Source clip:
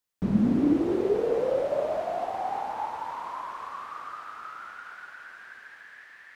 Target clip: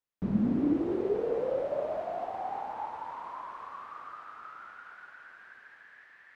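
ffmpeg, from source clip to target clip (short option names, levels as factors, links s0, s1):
-af "highshelf=f=4000:g=-11,volume=0.596"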